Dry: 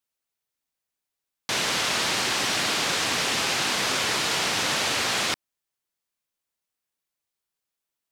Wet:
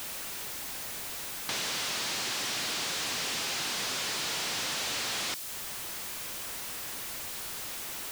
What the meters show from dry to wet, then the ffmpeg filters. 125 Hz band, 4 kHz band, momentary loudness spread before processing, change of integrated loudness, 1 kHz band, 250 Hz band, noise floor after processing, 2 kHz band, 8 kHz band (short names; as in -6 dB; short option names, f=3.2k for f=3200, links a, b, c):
-9.0 dB, -6.5 dB, 3 LU, -9.0 dB, -9.5 dB, -9.5 dB, -39 dBFS, -8.5 dB, -4.5 dB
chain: -filter_complex "[0:a]aeval=exprs='val(0)+0.5*0.0316*sgn(val(0))':c=same,acrossover=split=3200[a][b];[a]acompressor=threshold=-37dB:ratio=6[c];[b]asoftclip=type=tanh:threshold=-33.5dB[d];[c][d]amix=inputs=2:normalize=0"